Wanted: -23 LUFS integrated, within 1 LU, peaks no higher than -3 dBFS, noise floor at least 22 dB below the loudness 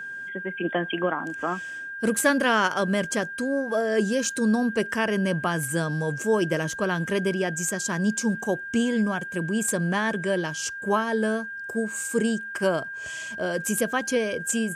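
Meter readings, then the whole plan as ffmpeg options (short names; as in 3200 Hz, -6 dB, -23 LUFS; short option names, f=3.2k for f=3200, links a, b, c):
steady tone 1600 Hz; tone level -33 dBFS; loudness -25.5 LUFS; peak -9.0 dBFS; loudness target -23.0 LUFS
-> -af "bandreject=f=1.6k:w=30"
-af "volume=2.5dB"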